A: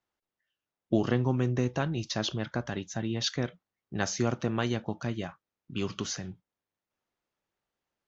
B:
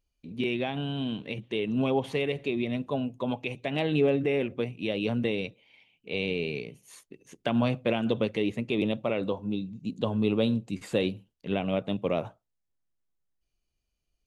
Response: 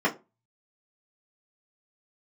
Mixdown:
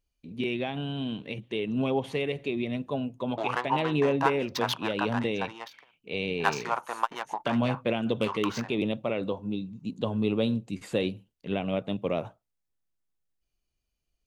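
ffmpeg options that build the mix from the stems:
-filter_complex "[0:a]adynamicsmooth=sensitivity=6:basefreq=1300,highpass=frequency=940:width_type=q:width=4.6,adelay=2450,volume=2.5dB[link_01];[1:a]volume=-1dB,asplit=2[link_02][link_03];[link_03]apad=whole_len=464331[link_04];[link_01][link_04]sidechaingate=range=-33dB:threshold=-56dB:ratio=16:detection=peak[link_05];[link_05][link_02]amix=inputs=2:normalize=0"

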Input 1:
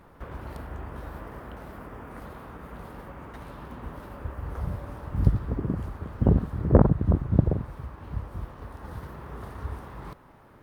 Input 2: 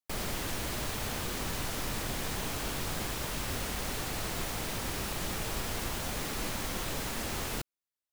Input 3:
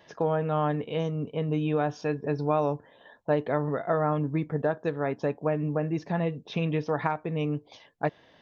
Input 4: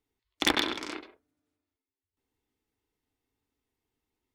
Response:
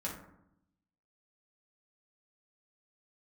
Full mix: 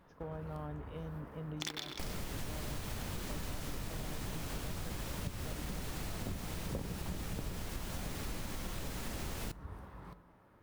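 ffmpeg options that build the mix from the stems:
-filter_complex "[0:a]volume=-12dB,asplit=2[link_01][link_02];[link_02]volume=-10.5dB[link_03];[1:a]lowshelf=frequency=250:gain=8,adelay=1900,volume=-1dB,asplit=2[link_04][link_05];[link_05]volume=-15.5dB[link_06];[2:a]lowshelf=frequency=220:gain=11.5,volume=-20dB[link_07];[3:a]equalizer=frequency=5800:width=0.85:gain=11,acrusher=bits=3:mode=log:mix=0:aa=0.000001,adelay=1200,volume=-9dB[link_08];[4:a]atrim=start_sample=2205[link_09];[link_03][link_06]amix=inputs=2:normalize=0[link_10];[link_10][link_09]afir=irnorm=-1:irlink=0[link_11];[link_01][link_04][link_07][link_08][link_11]amix=inputs=5:normalize=0,acompressor=threshold=-37dB:ratio=6"

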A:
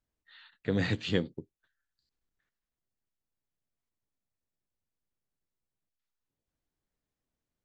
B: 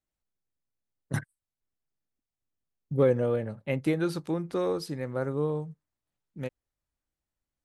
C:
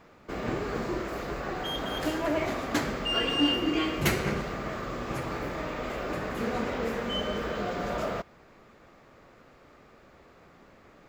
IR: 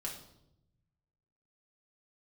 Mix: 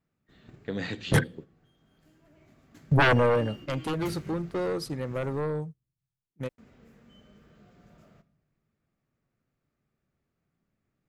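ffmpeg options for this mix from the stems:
-filter_complex "[0:a]lowshelf=frequency=140:gain=-8.5,dynaudnorm=framelen=120:gausssize=21:maxgain=4dB,volume=-4dB,asplit=3[link_01][link_02][link_03];[link_02]volume=-11dB[link_04];[1:a]agate=range=-18dB:threshold=-38dB:ratio=16:detection=peak,aeval=exprs='0.237*sin(PI/2*3.98*val(0)/0.237)':channel_layout=same,volume=-3dB,afade=type=out:start_time=3.01:duration=0.61:silence=0.298538[link_05];[2:a]equalizer=frequency=125:width_type=o:width=1:gain=9,equalizer=frequency=500:width_type=o:width=1:gain=-7,equalizer=frequency=1000:width_type=o:width=1:gain=-8,equalizer=frequency=2000:width_type=o:width=1:gain=-3,equalizer=frequency=4000:width_type=o:width=1:gain=-4,volume=-17dB,asplit=3[link_06][link_07][link_08];[link_06]atrim=end=5.41,asetpts=PTS-STARTPTS,afade=type=out:start_time=5.406:duration=0.004:curve=hsin[link_09];[link_07]atrim=start=5.41:end=6.58,asetpts=PTS-STARTPTS,volume=0[link_10];[link_08]atrim=start=6.58,asetpts=PTS-STARTPTS,afade=type=in:duration=0.004:curve=hsin[link_11];[link_09][link_10][link_11]concat=n=3:v=0:a=1,asplit=2[link_12][link_13];[link_13]volume=-9.5dB[link_14];[link_03]apad=whole_len=488637[link_15];[link_12][link_15]sidechaincompress=threshold=-49dB:ratio=8:attack=16:release=1090[link_16];[3:a]atrim=start_sample=2205[link_17];[link_04][link_14]amix=inputs=2:normalize=0[link_18];[link_18][link_17]afir=irnorm=-1:irlink=0[link_19];[link_01][link_05][link_16][link_19]amix=inputs=4:normalize=0,agate=range=-8dB:threshold=-42dB:ratio=16:detection=peak"

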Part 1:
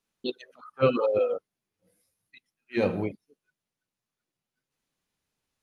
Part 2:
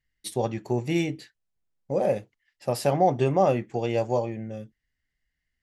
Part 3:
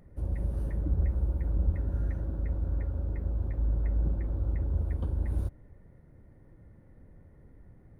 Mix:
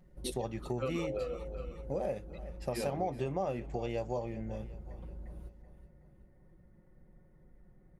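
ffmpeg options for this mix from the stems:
ffmpeg -i stem1.wav -i stem2.wav -i stem3.wav -filter_complex "[0:a]volume=-7.5dB,asplit=2[link_01][link_02];[link_02]volume=-13.5dB[link_03];[1:a]volume=-4.5dB,asplit=2[link_04][link_05];[link_05]volume=-21.5dB[link_06];[2:a]aecho=1:1:5.5:0.79,acompressor=threshold=-38dB:ratio=2.5,volume=-8dB,asplit=2[link_07][link_08];[link_08]volume=-11.5dB[link_09];[link_03][link_06][link_09]amix=inputs=3:normalize=0,aecho=0:1:378|756|1134|1512|1890|2268|2646:1|0.48|0.23|0.111|0.0531|0.0255|0.0122[link_10];[link_01][link_04][link_07][link_10]amix=inputs=4:normalize=0,acompressor=threshold=-33dB:ratio=3" out.wav

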